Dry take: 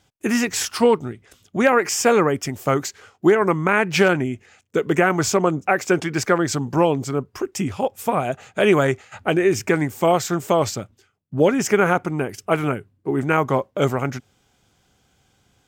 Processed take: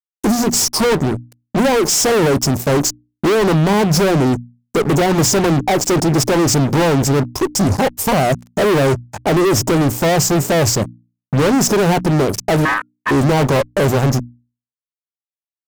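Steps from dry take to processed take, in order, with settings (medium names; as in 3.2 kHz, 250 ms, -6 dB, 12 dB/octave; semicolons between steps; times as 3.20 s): elliptic band-stop 950–4900 Hz; fuzz box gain 34 dB, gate -40 dBFS; bass shelf 370 Hz +3 dB; 12.65–13.11 s: ring modulator 1.4 kHz; hum notches 60/120/180/240/300 Hz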